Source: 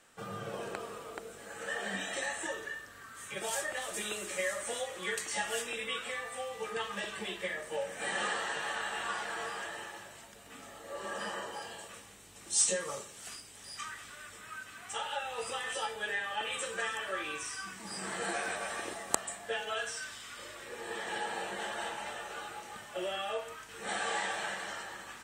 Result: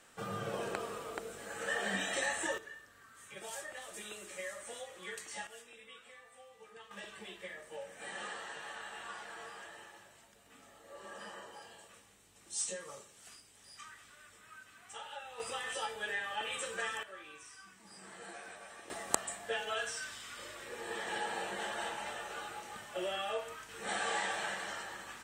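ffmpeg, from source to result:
-af "asetnsamples=n=441:p=0,asendcmd='2.58 volume volume -9dB;5.47 volume volume -17.5dB;6.91 volume volume -9.5dB;15.4 volume volume -2.5dB;17.03 volume volume -13.5dB;18.9 volume volume -1dB',volume=1.5dB"

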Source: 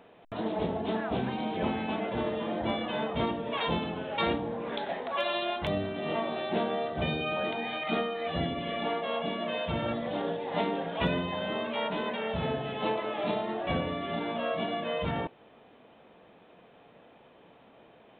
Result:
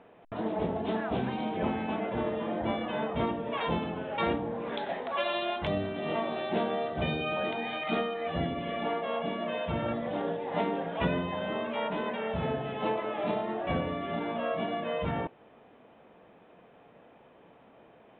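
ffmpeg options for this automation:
-af "asetnsamples=n=441:p=0,asendcmd='0.76 lowpass f 3700;1.49 lowpass f 2600;4.55 lowpass f 4000;8.14 lowpass f 2600',lowpass=2.5k"

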